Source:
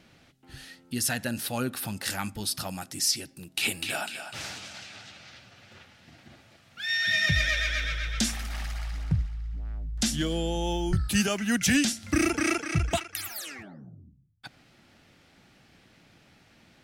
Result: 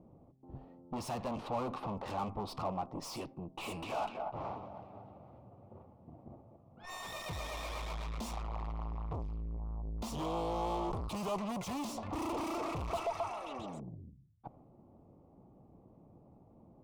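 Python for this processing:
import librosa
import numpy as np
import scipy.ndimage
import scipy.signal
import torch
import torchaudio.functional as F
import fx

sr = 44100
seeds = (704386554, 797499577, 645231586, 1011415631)

y = fx.env_lowpass(x, sr, base_hz=400.0, full_db=-22.0)
y = fx.echo_stepped(y, sr, ms=133, hz=620.0, octaves=0.7, feedback_pct=70, wet_db=-3.0, at=(11.76, 13.8))
y = fx.tube_stage(y, sr, drive_db=41.0, bias=0.55)
y = fx.curve_eq(y, sr, hz=(260.0, 1100.0, 1600.0, 2400.0, 11000.0), db=(0, 11, -15, -5, -9))
y = y * librosa.db_to_amplitude(3.5)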